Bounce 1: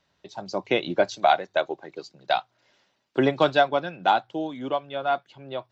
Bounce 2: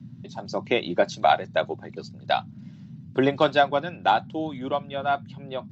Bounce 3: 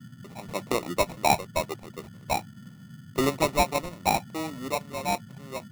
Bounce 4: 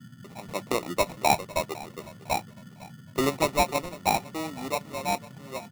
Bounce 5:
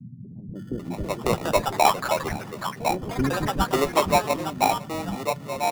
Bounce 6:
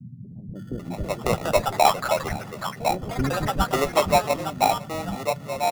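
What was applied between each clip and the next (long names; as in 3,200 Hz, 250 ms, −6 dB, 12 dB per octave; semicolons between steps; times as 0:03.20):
noise in a band 100–230 Hz −42 dBFS
sample-rate reduction 1,600 Hz, jitter 0%; level −3.5 dB
low-shelf EQ 180 Hz −3 dB; repeating echo 504 ms, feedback 36%, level −19.5 dB
tilt shelving filter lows +3.5 dB, about 780 Hz; multiband delay without the direct sound lows, highs 550 ms, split 310 Hz; delay with pitch and tempo change per echo 508 ms, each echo +5 semitones, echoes 3, each echo −6 dB; level +4 dB
comb filter 1.5 ms, depth 32%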